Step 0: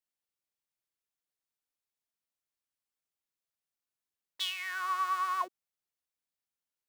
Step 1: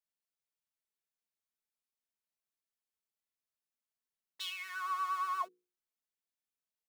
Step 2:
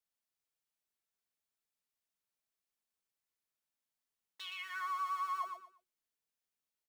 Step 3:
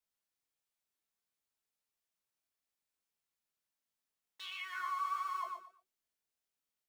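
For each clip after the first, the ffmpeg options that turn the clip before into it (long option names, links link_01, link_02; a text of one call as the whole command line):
ffmpeg -i in.wav -af "bandreject=frequency=60:width_type=h:width=6,bandreject=frequency=120:width_type=h:width=6,bandreject=frequency=180:width_type=h:width=6,bandreject=frequency=240:width_type=h:width=6,bandreject=frequency=300:width_type=h:width=6,bandreject=frequency=360:width_type=h:width=6,bandreject=frequency=420:width_type=h:width=6,bandreject=frequency=480:width_type=h:width=6,aecho=1:1:4.6:0.94,volume=-8dB" out.wav
ffmpeg -i in.wav -filter_complex "[0:a]acrossover=split=660|2900[link_01][link_02][link_03];[link_01]acompressor=threshold=-56dB:ratio=4[link_04];[link_02]acompressor=threshold=-38dB:ratio=4[link_05];[link_03]acompressor=threshold=-57dB:ratio=4[link_06];[link_04][link_05][link_06]amix=inputs=3:normalize=0,aecho=1:1:118|236|354:0.501|0.125|0.0313" out.wav
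ffmpeg -i in.wav -af "flanger=delay=18.5:depth=7.9:speed=1.5,volume=3dB" out.wav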